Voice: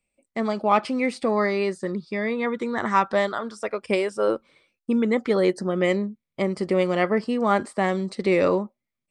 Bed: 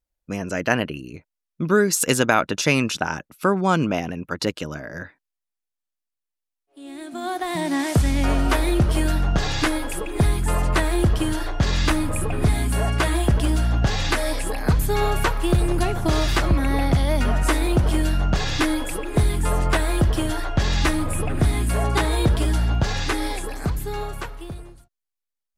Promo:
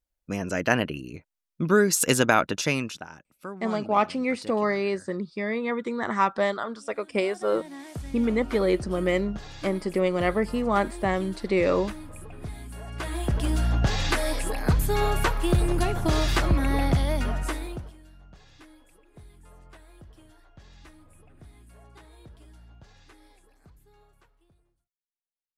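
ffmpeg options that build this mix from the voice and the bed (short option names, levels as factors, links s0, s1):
-filter_complex "[0:a]adelay=3250,volume=0.75[s0];[1:a]volume=4.47,afade=t=out:st=2.39:d=0.68:silence=0.158489,afade=t=in:st=12.86:d=0.82:silence=0.177828,afade=t=out:st=16.88:d=1.06:silence=0.0421697[s1];[s0][s1]amix=inputs=2:normalize=0"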